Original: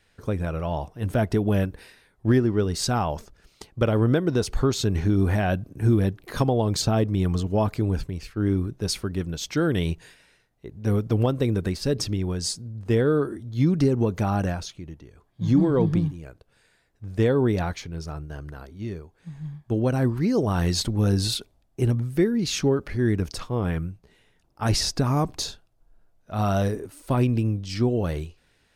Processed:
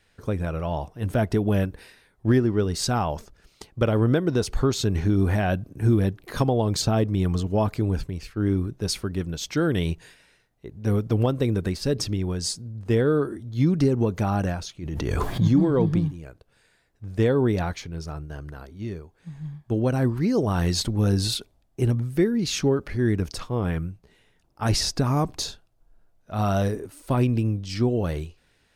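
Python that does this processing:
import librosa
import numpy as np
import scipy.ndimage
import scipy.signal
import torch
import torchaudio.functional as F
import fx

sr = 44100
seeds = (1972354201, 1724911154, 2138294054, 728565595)

y = fx.pre_swell(x, sr, db_per_s=22.0, at=(14.81, 15.47), fade=0.02)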